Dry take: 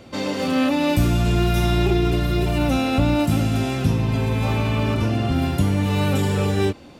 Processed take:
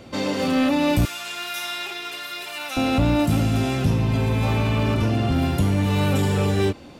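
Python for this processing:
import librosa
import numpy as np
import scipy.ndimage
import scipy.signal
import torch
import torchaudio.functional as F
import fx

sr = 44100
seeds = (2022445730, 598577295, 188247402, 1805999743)

y = fx.highpass(x, sr, hz=1300.0, slope=12, at=(1.05, 2.77))
y = 10.0 ** (-12.5 / 20.0) * np.tanh(y / 10.0 ** (-12.5 / 20.0))
y = F.gain(torch.from_numpy(y), 1.0).numpy()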